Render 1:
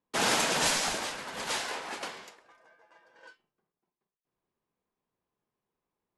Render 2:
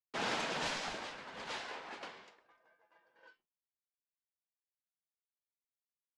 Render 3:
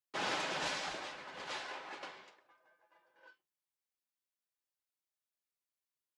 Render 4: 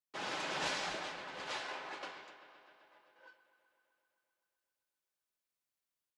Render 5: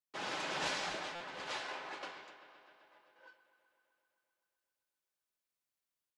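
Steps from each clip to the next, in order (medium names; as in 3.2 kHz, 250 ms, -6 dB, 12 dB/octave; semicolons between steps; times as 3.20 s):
low-pass 4.3 kHz 12 dB/octave; expander -59 dBFS; trim -8.5 dB
bass shelf 160 Hz -7.5 dB; comb of notches 230 Hz; trim +1.5 dB
feedback echo behind a low-pass 129 ms, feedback 76%, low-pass 3.7 kHz, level -13.5 dB; level rider gain up to 6 dB; trim -5 dB
buffer glitch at 1.15 s, samples 256, times 8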